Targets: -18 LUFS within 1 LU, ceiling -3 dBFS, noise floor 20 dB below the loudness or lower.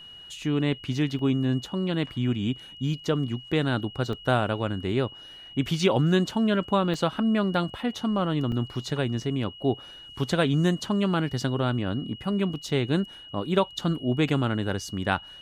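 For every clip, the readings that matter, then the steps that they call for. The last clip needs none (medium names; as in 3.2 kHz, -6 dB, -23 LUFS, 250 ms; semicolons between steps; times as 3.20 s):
dropouts 4; longest dropout 2.0 ms; steady tone 2.9 kHz; tone level -43 dBFS; loudness -26.5 LUFS; peak level -9.5 dBFS; loudness target -18.0 LUFS
-> interpolate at 1.19/4.13/6.94/8.52 s, 2 ms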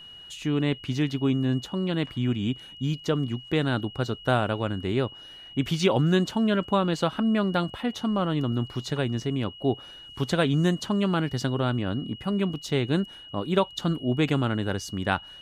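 dropouts 0; steady tone 2.9 kHz; tone level -43 dBFS
-> band-stop 2.9 kHz, Q 30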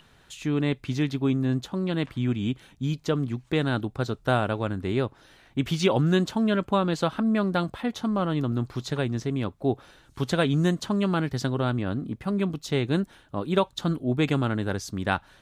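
steady tone not found; loudness -27.0 LUFS; peak level -9.5 dBFS; loudness target -18.0 LUFS
-> trim +9 dB; peak limiter -3 dBFS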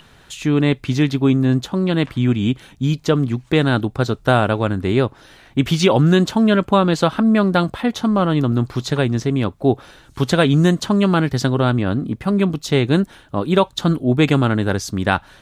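loudness -18.0 LUFS; peak level -3.0 dBFS; noise floor -49 dBFS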